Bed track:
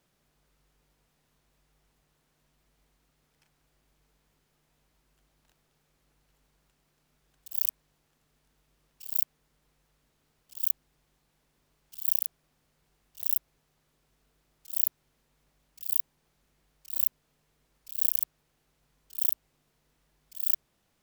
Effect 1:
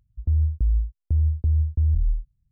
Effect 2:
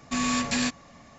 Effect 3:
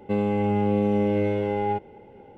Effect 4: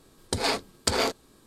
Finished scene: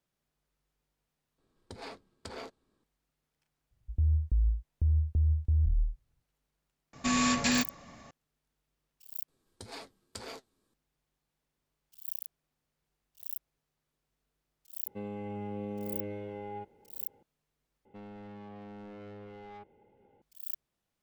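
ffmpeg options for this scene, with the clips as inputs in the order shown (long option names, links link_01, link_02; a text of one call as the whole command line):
ffmpeg -i bed.wav -i cue0.wav -i cue1.wav -i cue2.wav -i cue3.wav -filter_complex "[4:a]asplit=2[link_01][link_02];[3:a]asplit=2[link_03][link_04];[0:a]volume=-12dB[link_05];[link_01]lowpass=frequency=2800:poles=1[link_06];[link_02]flanger=delay=5.8:depth=6.2:regen=66:speed=1.9:shape=triangular[link_07];[link_04]asoftclip=type=tanh:threshold=-28dB[link_08];[link_05]asplit=4[link_09][link_10][link_11][link_12];[link_09]atrim=end=1.384[link_13];[link_06]atrim=end=1.46,asetpts=PTS-STARTPTS,volume=-17dB[link_14];[link_10]atrim=start=2.836:end=9.284[link_15];[link_07]atrim=end=1.46,asetpts=PTS-STARTPTS,volume=-15dB[link_16];[link_11]atrim=start=10.736:end=17.854[link_17];[link_08]atrim=end=2.37,asetpts=PTS-STARTPTS,volume=-17dB[link_18];[link_12]atrim=start=20.216[link_19];[1:a]atrim=end=2.51,asetpts=PTS-STARTPTS,volume=-6dB,afade=type=in:duration=0.004:curve=hsin,afade=type=out:start_time=2.506:duration=0.004:curve=hsin,adelay=3710[link_20];[2:a]atrim=end=1.18,asetpts=PTS-STARTPTS,volume=-1dB,afade=type=in:duration=0.004:curve=hsin,afade=type=out:start_time=1.176:duration=0.004:curve=hsin,adelay=6930[link_21];[link_03]atrim=end=2.37,asetpts=PTS-STARTPTS,volume=-16dB,afade=type=in:duration=0.004:curve=hsin,afade=type=out:start_time=2.366:duration=0.004:curve=hsin,adelay=14860[link_22];[link_13][link_14]acrossfade=duration=0.004:curve1=hsin:curve2=hsin[link_23];[link_23][link_15]acrossfade=duration=0.004:curve1=hsin:curve2=hsin[link_24];[link_24][link_16]acrossfade=duration=0.004:curve1=hsin:curve2=hsin[link_25];[link_25][link_17]acrossfade=duration=0.004:curve1=hsin:curve2=hsin[link_26];[link_26][link_18]acrossfade=duration=0.004:curve1=hsin:curve2=hsin[link_27];[link_27][link_19]acrossfade=duration=0.004:curve1=hsin:curve2=hsin[link_28];[link_28][link_20][link_21][link_22]amix=inputs=4:normalize=0" out.wav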